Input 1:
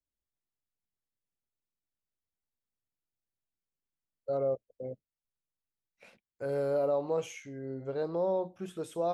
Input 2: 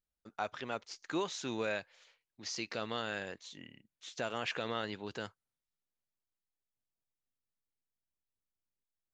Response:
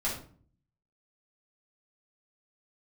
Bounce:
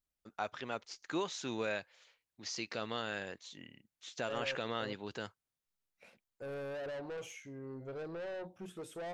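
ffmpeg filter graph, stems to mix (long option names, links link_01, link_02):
-filter_complex "[0:a]asoftclip=type=tanh:threshold=-36dB,volume=-3.5dB[link_01];[1:a]volume=-1dB[link_02];[link_01][link_02]amix=inputs=2:normalize=0"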